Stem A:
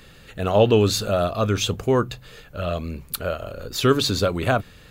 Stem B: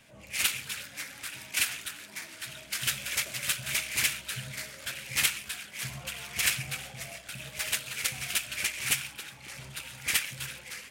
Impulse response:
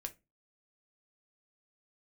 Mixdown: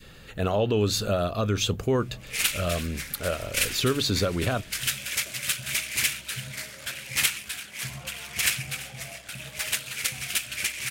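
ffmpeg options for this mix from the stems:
-filter_complex "[0:a]alimiter=limit=-14dB:level=0:latency=1:release=154,volume=-0.5dB[link_01];[1:a]adelay=2000,volume=2.5dB,asplit=2[link_02][link_03];[link_03]volume=-19.5dB,aecho=0:1:338:1[link_04];[link_01][link_02][link_04]amix=inputs=3:normalize=0,adynamicequalizer=threshold=0.00562:dfrequency=860:dqfactor=1:tfrequency=860:tqfactor=1:attack=5:release=100:ratio=0.375:range=2:mode=cutabove:tftype=bell"

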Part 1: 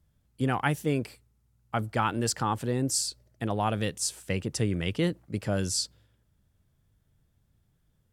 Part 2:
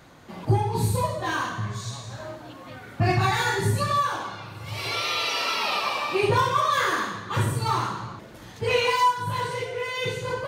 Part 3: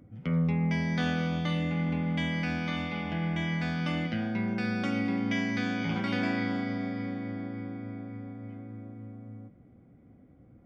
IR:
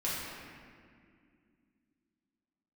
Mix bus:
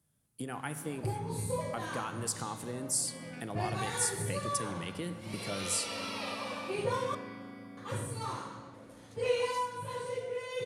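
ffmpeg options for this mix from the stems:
-filter_complex "[0:a]volume=-3.5dB,asplit=2[link_01][link_02];[link_02]volume=-23dB[link_03];[1:a]lowpass=10000,equalizer=frequency=530:width=4.3:gain=12.5,adelay=550,volume=-15.5dB,asplit=3[link_04][link_05][link_06];[link_04]atrim=end=7.15,asetpts=PTS-STARTPTS,afade=type=out:start_time=7.146:duration=0.004:curve=hsin[link_07];[link_05]atrim=start=7.15:end=7.77,asetpts=PTS-STARTPTS,volume=0[link_08];[link_06]atrim=start=7.77,asetpts=PTS-STARTPTS,afade=type=in:duration=0.004:curve=hsin[link_09];[link_07][link_08][link_09]concat=n=3:v=0:a=1,asplit=2[link_10][link_11];[link_11]volume=-16.5dB[link_12];[2:a]adelay=900,volume=-16dB[link_13];[link_01][link_13]amix=inputs=2:normalize=0,highpass=frequency=110:width=0.5412,highpass=frequency=110:width=1.3066,acompressor=threshold=-39dB:ratio=3,volume=0dB[link_14];[3:a]atrim=start_sample=2205[link_15];[link_03][link_12]amix=inputs=2:normalize=0[link_16];[link_16][link_15]afir=irnorm=-1:irlink=0[link_17];[link_10][link_14][link_17]amix=inputs=3:normalize=0,equalizer=frequency=10000:width=1.6:gain=14.5"

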